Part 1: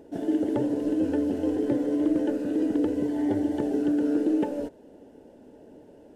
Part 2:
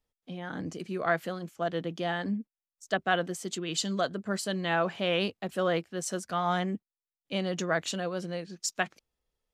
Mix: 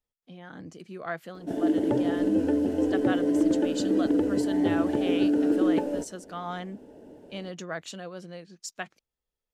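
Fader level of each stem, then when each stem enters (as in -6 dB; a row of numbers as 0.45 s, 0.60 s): +1.0 dB, -6.5 dB; 1.35 s, 0.00 s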